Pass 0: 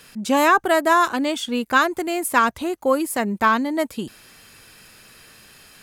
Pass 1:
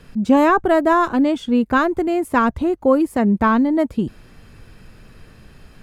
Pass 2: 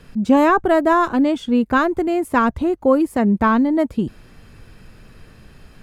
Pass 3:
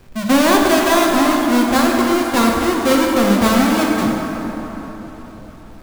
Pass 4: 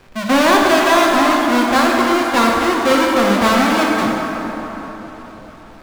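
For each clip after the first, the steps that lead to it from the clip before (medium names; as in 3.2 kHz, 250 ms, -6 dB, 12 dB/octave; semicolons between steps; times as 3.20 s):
tilt EQ -4 dB/octave
no audible change
square wave that keeps the level; plate-style reverb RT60 3.8 s, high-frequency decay 0.5×, DRR -1.5 dB; modulated delay 424 ms, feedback 61%, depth 87 cents, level -22 dB; trim -5.5 dB
overdrive pedal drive 10 dB, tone 3.5 kHz, clips at -1 dBFS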